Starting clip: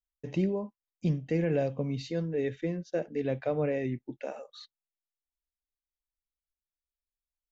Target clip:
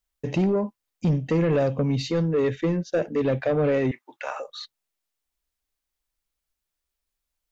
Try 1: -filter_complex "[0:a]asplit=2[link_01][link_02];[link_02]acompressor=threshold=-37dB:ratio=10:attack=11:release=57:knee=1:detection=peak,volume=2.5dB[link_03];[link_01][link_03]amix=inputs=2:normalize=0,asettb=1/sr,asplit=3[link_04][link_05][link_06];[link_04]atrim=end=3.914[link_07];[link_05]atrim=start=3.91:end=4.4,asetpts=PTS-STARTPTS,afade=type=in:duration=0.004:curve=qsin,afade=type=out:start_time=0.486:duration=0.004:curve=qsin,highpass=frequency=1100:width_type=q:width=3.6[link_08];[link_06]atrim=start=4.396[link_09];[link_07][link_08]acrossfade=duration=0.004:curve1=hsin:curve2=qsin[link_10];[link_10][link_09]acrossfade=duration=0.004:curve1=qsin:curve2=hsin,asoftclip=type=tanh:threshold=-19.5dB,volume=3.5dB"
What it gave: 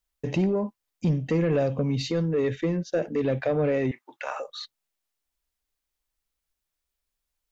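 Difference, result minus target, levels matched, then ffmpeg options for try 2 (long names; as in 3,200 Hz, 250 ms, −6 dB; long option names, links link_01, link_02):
downward compressor: peak gain reduction +8 dB
-filter_complex "[0:a]asplit=2[link_01][link_02];[link_02]acompressor=threshold=-28dB:ratio=10:attack=11:release=57:knee=1:detection=peak,volume=2.5dB[link_03];[link_01][link_03]amix=inputs=2:normalize=0,asettb=1/sr,asplit=3[link_04][link_05][link_06];[link_04]atrim=end=3.914[link_07];[link_05]atrim=start=3.91:end=4.4,asetpts=PTS-STARTPTS,afade=type=in:duration=0.004:curve=qsin,afade=type=out:start_time=0.486:duration=0.004:curve=qsin,highpass=frequency=1100:width_type=q:width=3.6[link_08];[link_06]atrim=start=4.396[link_09];[link_07][link_08]acrossfade=duration=0.004:curve1=hsin:curve2=qsin[link_10];[link_10][link_09]acrossfade=duration=0.004:curve1=qsin:curve2=hsin,asoftclip=type=tanh:threshold=-19.5dB,volume=3.5dB"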